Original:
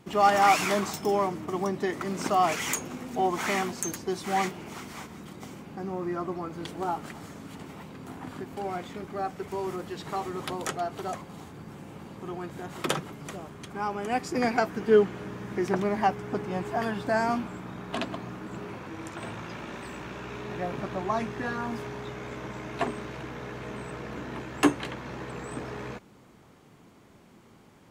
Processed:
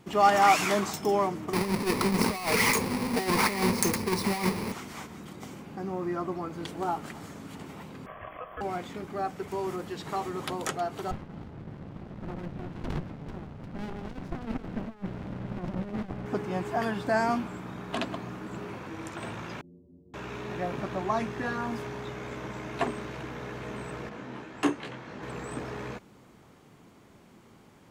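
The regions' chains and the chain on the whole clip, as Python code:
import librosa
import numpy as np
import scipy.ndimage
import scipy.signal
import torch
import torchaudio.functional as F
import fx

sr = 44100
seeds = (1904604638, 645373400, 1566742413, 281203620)

y = fx.chain(x, sr, fx.halfwave_hold(),
    fx.ripple_eq(per_octave=0.89, db=9),
    fx.over_compress(threshold_db=-25.0, ratio=-0.5), at=(1.53, 4.72))
y = fx.chain(y, sr, fx.brickwall_bandstop(low_hz=2600.0, high_hz=12000.0),
    fx.high_shelf(hz=8100.0, db=-11.5),
    fx.ring_mod(carrier_hz=880.0), at=(8.06, 8.61))
y = fx.chain(y, sr, fx.air_absorb(metres=330.0),
    fx.over_compress(threshold_db=-31.0, ratio=-1.0),
    fx.running_max(window=65), at=(11.11, 16.26))
y = fx.chain(y, sr, fx.cheby2_lowpass(hz=2200.0, order=4, stop_db=80),
    fx.stiff_resonator(f0_hz=84.0, decay_s=0.51, stiffness=0.008), at=(19.61, 20.14))
y = fx.chain(y, sr, fx.highpass(hz=110.0, slope=12),
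    fx.high_shelf(hz=10000.0, db=-11.5),
    fx.detune_double(cents=32), at=(24.09, 25.23))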